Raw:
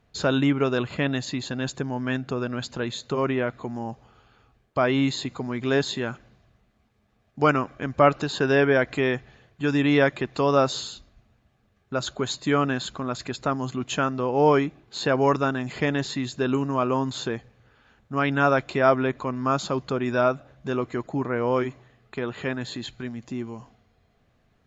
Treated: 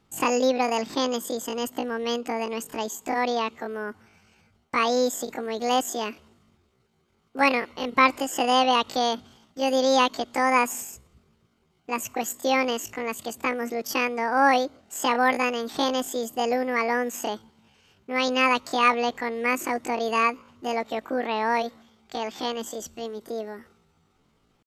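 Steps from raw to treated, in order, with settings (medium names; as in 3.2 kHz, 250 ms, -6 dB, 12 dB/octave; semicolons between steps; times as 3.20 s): dynamic bell 170 Hz, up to +4 dB, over -43 dBFS, Q 2.7; pitch shift +10.5 st; trim -1 dB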